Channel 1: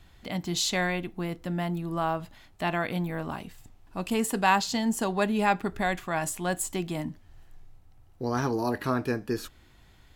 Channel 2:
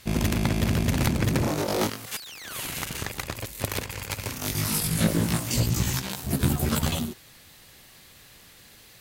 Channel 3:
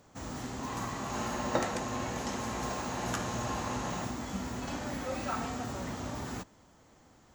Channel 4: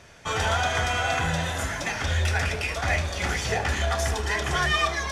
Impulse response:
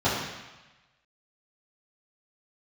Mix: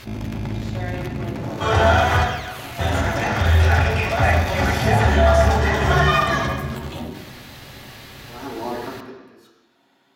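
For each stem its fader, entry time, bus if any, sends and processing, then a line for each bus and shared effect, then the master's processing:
-10.0 dB, 0.00 s, send -5 dB, HPF 240 Hz 24 dB/oct; high shelf 6400 Hz +11 dB; auto swell 0.515 s
-12.0 dB, 0.00 s, send -18 dB, bell 8900 Hz -5 dB 0.56 oct; fast leveller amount 70%
-18.5 dB, 0.00 s, no send, dry
-0.5 dB, 1.35 s, muted 2.25–2.79, send -9 dB, dry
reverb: on, RT60 1.1 s, pre-delay 3 ms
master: high shelf 5400 Hz -9 dB; ending taper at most 110 dB/s

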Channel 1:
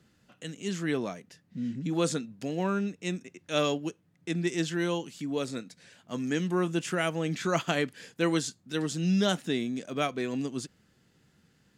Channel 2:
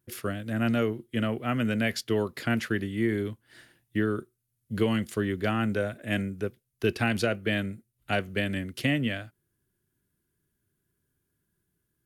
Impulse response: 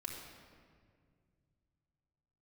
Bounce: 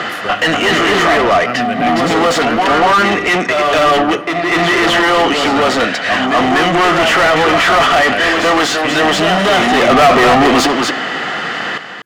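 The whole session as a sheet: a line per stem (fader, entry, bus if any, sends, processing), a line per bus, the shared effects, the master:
+3.0 dB, 0.00 s, send -16 dB, echo send -8.5 dB, high shelf 5500 Hz -11 dB; overdrive pedal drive 38 dB, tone 3800 Hz, clips at -11.5 dBFS; small resonant body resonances 720/1200/1900/3000 Hz, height 9 dB, ringing for 25 ms; auto duck -23 dB, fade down 1.30 s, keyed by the second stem
-6.5 dB, 0.00 s, no send, no echo send, dry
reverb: on, RT60 2.0 s, pre-delay 3 ms
echo: echo 0.241 s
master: overdrive pedal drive 26 dB, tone 2500 Hz, clips at -1.5 dBFS

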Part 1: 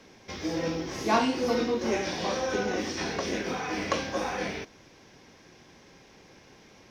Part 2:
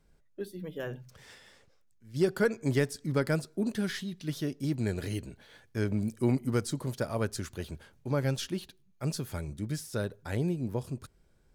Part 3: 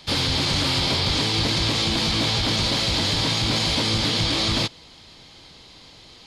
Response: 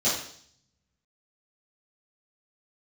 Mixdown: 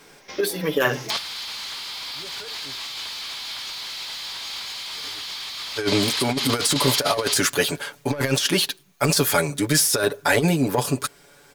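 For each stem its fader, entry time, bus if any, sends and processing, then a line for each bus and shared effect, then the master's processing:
-18.0 dB, 0.00 s, no send, compressor, threshold -34 dBFS, peak gain reduction 14.5 dB
+1.5 dB, 0.00 s, muted 2.76–4.95, no send, low shelf 130 Hz -9.5 dB; comb 7 ms, depth 86%
+1.5 dB, 1.10 s, no send, HPF 870 Hz 24 dB/oct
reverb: off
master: high shelf 9800 Hz +10 dB; overdrive pedal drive 21 dB, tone 6300 Hz, clips at -7 dBFS; negative-ratio compressor -23 dBFS, ratio -0.5

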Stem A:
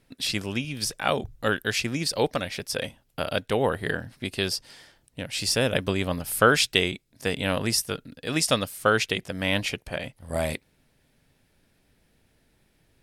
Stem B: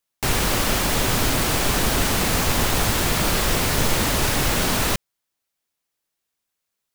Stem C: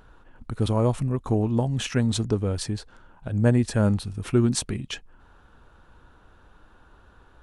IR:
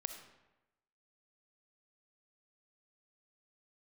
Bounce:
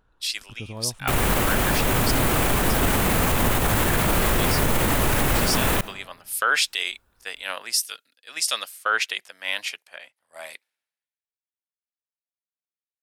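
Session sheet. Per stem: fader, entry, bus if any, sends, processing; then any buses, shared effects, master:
+0.5 dB, 0.00 s, no send, HPF 1100 Hz 12 dB/oct; three-band expander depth 100%
+2.5 dB, 0.85 s, send -9 dB, bell 5100 Hz -10.5 dB 1.2 oct
-13.0 dB, 0.00 s, no send, de-esser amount 90%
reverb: on, RT60 1.0 s, pre-delay 20 ms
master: limiter -11 dBFS, peak gain reduction 13.5 dB

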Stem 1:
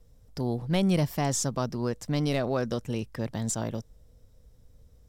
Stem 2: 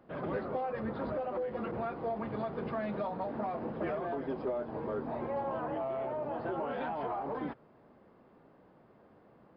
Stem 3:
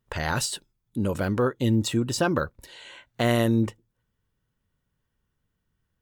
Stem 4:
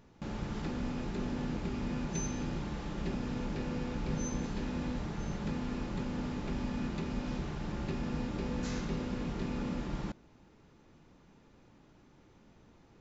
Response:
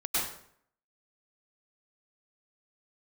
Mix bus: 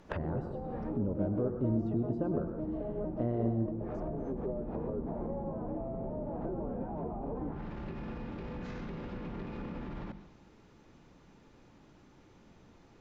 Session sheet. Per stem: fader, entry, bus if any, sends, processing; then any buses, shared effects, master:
-4.0 dB, 0.45 s, no bus, no send, arpeggiated vocoder bare fifth, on G#3, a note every 0.235 s; inverse Chebyshev high-pass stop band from 180 Hz, stop band 40 dB; bell 5400 Hz +12.5 dB 0.51 oct
-1.0 dB, 0.00 s, no bus, send -20 dB, auto duck -10 dB, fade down 1.35 s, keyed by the third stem
-1.0 dB, 0.00 s, bus A, send -20 dB, dry
+1.5 dB, 0.00 s, bus A, send -22 dB, notches 50/100/150/200/250 Hz; limiter -34 dBFS, peak gain reduction 10 dB
bus A: 0.0 dB, compressor 2:1, threshold -37 dBFS, peak gain reduction 10.5 dB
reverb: on, RT60 0.65 s, pre-delay 92 ms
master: treble ducked by the level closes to 500 Hz, closed at -31 dBFS

